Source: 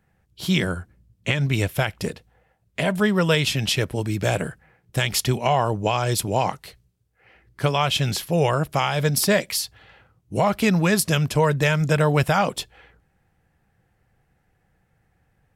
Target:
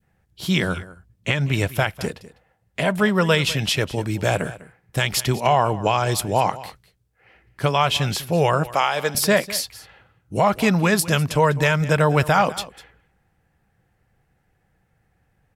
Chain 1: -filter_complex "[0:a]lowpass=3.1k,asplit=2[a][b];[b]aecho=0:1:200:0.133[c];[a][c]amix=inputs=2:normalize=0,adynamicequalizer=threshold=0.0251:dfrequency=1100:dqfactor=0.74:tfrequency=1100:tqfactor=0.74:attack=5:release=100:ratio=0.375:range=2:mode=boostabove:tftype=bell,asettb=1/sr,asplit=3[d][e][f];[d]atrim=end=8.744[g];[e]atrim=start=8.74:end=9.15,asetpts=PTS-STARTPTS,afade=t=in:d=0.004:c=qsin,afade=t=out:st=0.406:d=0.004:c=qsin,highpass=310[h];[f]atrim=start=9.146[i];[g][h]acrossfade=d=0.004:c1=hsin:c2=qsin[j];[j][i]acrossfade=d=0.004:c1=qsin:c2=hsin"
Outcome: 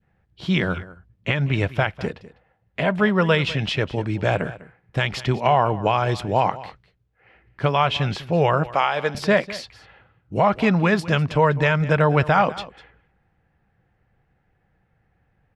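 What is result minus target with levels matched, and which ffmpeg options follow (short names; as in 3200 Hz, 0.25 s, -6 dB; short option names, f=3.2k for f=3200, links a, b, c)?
4000 Hz band -3.5 dB
-filter_complex "[0:a]asplit=2[a][b];[b]aecho=0:1:200:0.133[c];[a][c]amix=inputs=2:normalize=0,adynamicequalizer=threshold=0.0251:dfrequency=1100:dqfactor=0.74:tfrequency=1100:tqfactor=0.74:attack=5:release=100:ratio=0.375:range=2:mode=boostabove:tftype=bell,asettb=1/sr,asplit=3[d][e][f];[d]atrim=end=8.744[g];[e]atrim=start=8.74:end=9.15,asetpts=PTS-STARTPTS,afade=t=in:d=0.004:c=qsin,afade=t=out:st=0.406:d=0.004:c=qsin,highpass=310[h];[f]atrim=start=9.146[i];[g][h]acrossfade=d=0.004:c1=hsin:c2=qsin[j];[j][i]acrossfade=d=0.004:c1=qsin:c2=hsin"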